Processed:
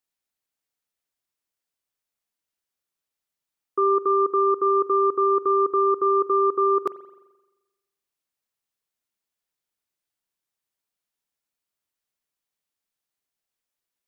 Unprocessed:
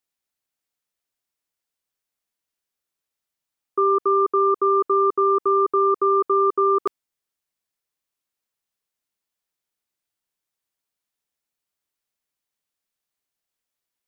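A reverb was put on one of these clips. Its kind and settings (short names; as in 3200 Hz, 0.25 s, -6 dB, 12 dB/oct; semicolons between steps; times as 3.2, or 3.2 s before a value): spring tank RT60 1.1 s, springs 43 ms, chirp 65 ms, DRR 15.5 dB; gain -2 dB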